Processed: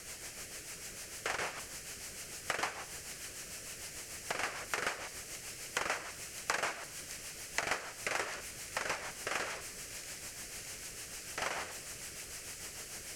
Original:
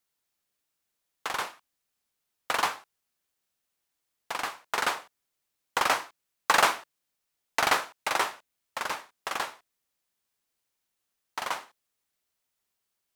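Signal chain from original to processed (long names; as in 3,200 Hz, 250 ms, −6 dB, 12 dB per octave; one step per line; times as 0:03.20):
converter with a step at zero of −36 dBFS
low-pass filter 7,900 Hz 12 dB per octave
parametric band 3,600 Hz −9.5 dB 0.34 octaves
rotating-speaker cabinet horn 6.7 Hz
octave-band graphic EQ 250/1,000/4,000 Hz −7/−10/−5 dB
downward compressor 5 to 1, threshold −39 dBFS, peak gain reduction 13.5 dB
delay with a high-pass on its return 613 ms, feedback 80%, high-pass 3,800 Hz, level −11 dB
convolution reverb RT60 1.1 s, pre-delay 38 ms, DRR 16.5 dB
level +6.5 dB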